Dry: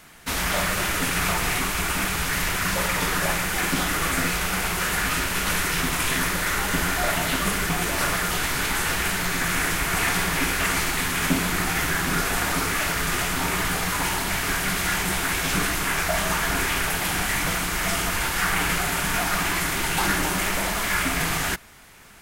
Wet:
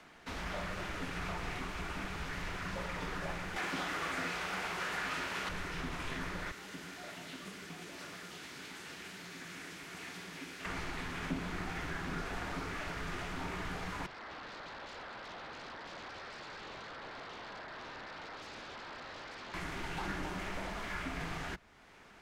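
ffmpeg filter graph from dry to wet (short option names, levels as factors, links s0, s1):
-filter_complex "[0:a]asettb=1/sr,asplit=3[s0][s1][s2];[s0]atrim=end=3.564[s3];[s1]atrim=start=3.56:end=5.49,asetpts=PTS-STARTPTS,afade=t=in:d=0.004:c=qsin,afade=t=out:st=1.926:d=0.004:c=qsin,highpass=f=520:p=1,acontrast=87[s4];[s2]atrim=start=5.486[s5];[s3][s4]acrossfade=d=0.004:c1=hsin:c2=qsin[s6];[s6][s5]acrossfade=d=0.004:c1=qsin:c2=hsin,asettb=1/sr,asplit=3[s7][s8][s9];[s7]atrim=end=6.514[s10];[s8]atrim=start=6.51:end=10.65,asetpts=PTS-STARTPTS,afade=t=in:d=0.004:c=qsin,afade=t=out:st=4.136:d=0.004:c=qsin,highpass=230,equalizer=f=860:w=0.39:g=-13[s11];[s9]atrim=start=10.646[s12];[s10][s11]acrossfade=d=0.004:c1=hsin:c2=qsin[s13];[s13][s12]acrossfade=d=0.004:c1=qsin:c2=hsin,asettb=1/sr,asplit=3[s14][s15][s16];[s14]atrim=end=14.064[s17];[s15]atrim=start=14.06:end=19.54,asetpts=PTS-STARTPTS,afade=t=in:d=0.004:c=qsin,afade=t=out:st=5.476:d=0.004:c=qsin,highpass=f=1000:w=0.5412,highpass=f=1000:w=1.3066,lowpass=f=2600:t=q:w=0.5098,lowpass=f=2600:t=q:w=0.6013,lowpass=f=2600:t=q:w=0.9,lowpass=f=2600:t=q:w=2.563,afreqshift=-3000,aeval=exprs='0.0316*(abs(mod(val(0)/0.0316+3,4)-2)-1)':c=same[s18];[s16]atrim=start=19.536[s19];[s17][s18]acrossfade=d=0.004:c1=hsin:c2=qsin[s20];[s20][s19]acrossfade=d=0.004:c1=qsin:c2=hsin,tiltshelf=f=1100:g=3.5,acrossover=split=140[s21][s22];[s22]acompressor=threshold=0.00141:ratio=1.5[s23];[s21][s23]amix=inputs=2:normalize=0,acrossover=split=220 6100:gain=0.224 1 0.126[s24][s25][s26];[s24][s25][s26]amix=inputs=3:normalize=0,volume=0.708"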